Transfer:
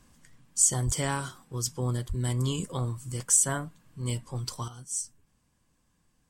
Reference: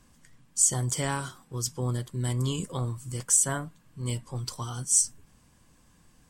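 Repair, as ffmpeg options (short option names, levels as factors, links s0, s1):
-filter_complex "[0:a]asplit=3[s0][s1][s2];[s0]afade=t=out:st=0.85:d=0.02[s3];[s1]highpass=f=140:w=0.5412,highpass=f=140:w=1.3066,afade=t=in:st=0.85:d=0.02,afade=t=out:st=0.97:d=0.02[s4];[s2]afade=t=in:st=0.97:d=0.02[s5];[s3][s4][s5]amix=inputs=3:normalize=0,asplit=3[s6][s7][s8];[s6]afade=t=out:st=2.08:d=0.02[s9];[s7]highpass=f=140:w=0.5412,highpass=f=140:w=1.3066,afade=t=in:st=2.08:d=0.02,afade=t=out:st=2.2:d=0.02[s10];[s8]afade=t=in:st=2.2:d=0.02[s11];[s9][s10][s11]amix=inputs=3:normalize=0,asetnsamples=n=441:p=0,asendcmd='4.68 volume volume 10.5dB',volume=1"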